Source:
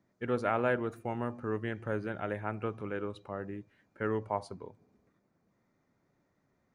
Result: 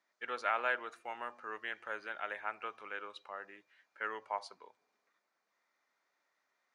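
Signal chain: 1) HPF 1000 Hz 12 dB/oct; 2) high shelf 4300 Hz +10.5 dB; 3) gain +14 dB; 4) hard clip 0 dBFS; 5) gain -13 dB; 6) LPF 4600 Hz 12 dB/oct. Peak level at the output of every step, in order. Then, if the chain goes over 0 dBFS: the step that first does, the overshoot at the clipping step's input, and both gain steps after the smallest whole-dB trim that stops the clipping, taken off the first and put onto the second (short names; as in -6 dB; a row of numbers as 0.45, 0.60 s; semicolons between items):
-20.0, -19.0, -5.0, -5.0, -18.0, -18.0 dBFS; no overload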